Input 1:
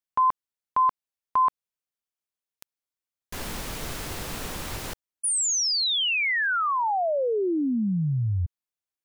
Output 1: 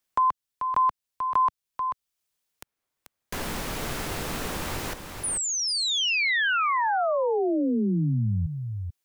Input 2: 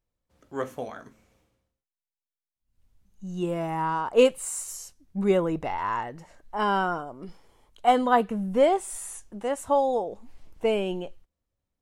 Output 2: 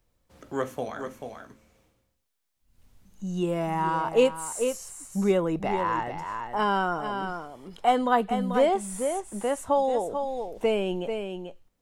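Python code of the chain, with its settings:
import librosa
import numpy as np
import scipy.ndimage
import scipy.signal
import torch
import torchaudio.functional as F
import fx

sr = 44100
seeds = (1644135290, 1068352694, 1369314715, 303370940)

y = x + 10.0 ** (-9.5 / 20.0) * np.pad(x, (int(438 * sr / 1000.0), 0))[:len(x)]
y = fx.band_squash(y, sr, depth_pct=40)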